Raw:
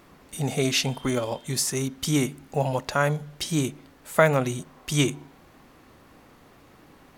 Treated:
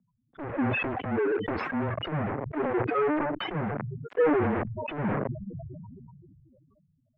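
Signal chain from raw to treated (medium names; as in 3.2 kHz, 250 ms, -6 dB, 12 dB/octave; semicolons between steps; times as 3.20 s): loudest bins only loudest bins 4; in parallel at -6 dB: fuzz box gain 49 dB, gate -46 dBFS; on the sum: mistuned SSB -150 Hz 350–2300 Hz; decay stretcher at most 23 dB/s; trim -7 dB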